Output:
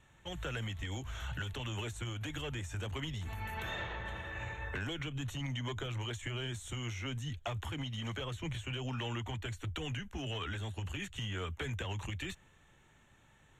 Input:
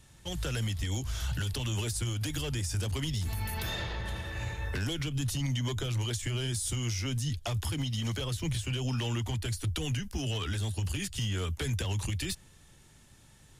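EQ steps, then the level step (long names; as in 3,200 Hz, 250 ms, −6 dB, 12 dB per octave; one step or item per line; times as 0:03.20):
moving average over 9 samples
low-shelf EQ 480 Hz −10.5 dB
+2.0 dB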